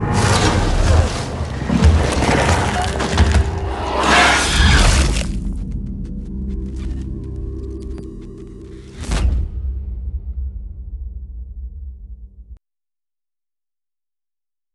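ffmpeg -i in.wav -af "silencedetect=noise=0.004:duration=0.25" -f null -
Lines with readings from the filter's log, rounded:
silence_start: 12.57
silence_end: 14.74 | silence_duration: 2.17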